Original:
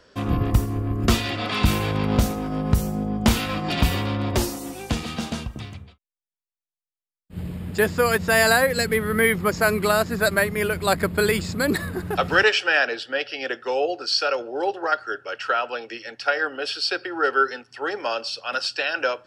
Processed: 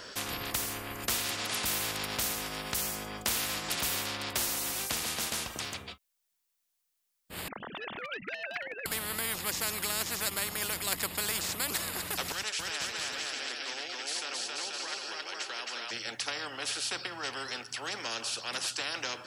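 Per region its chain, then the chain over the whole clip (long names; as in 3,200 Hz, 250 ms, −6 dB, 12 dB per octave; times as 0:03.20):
0:07.48–0:08.86: three sine waves on the formant tracks + transient designer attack −10 dB, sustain −1 dB
0:12.32–0:15.91: guitar amp tone stack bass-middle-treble 5-5-5 + bouncing-ball delay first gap 270 ms, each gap 0.8×, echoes 5
whole clip: spectral tilt +2 dB per octave; every bin compressed towards the loudest bin 4 to 1; level −7.5 dB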